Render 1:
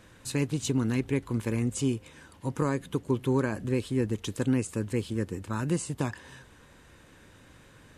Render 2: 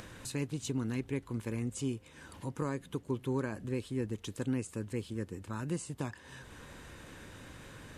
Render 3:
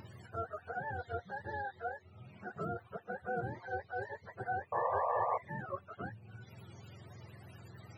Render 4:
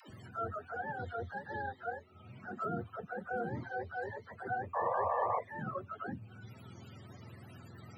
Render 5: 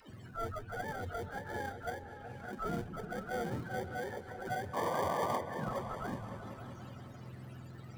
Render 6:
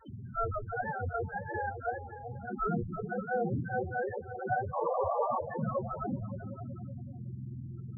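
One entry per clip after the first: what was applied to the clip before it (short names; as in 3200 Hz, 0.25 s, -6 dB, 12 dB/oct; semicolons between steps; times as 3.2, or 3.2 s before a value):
upward compressor, threshold -30 dBFS; gain -7.5 dB
spectrum mirrored in octaves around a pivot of 440 Hz; painted sound noise, 4.72–5.38, 460–1200 Hz -31 dBFS; gain -2 dB
small resonant body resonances 250/1300/3100 Hz, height 9 dB; dispersion lows, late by 0.102 s, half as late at 390 Hz
in parallel at -6 dB: sample-and-hold 33×; on the sum: repeats that get brighter 0.188 s, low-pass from 200 Hz, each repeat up 2 oct, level -6 dB; gain -2 dB
loudest bins only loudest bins 8; gain +7.5 dB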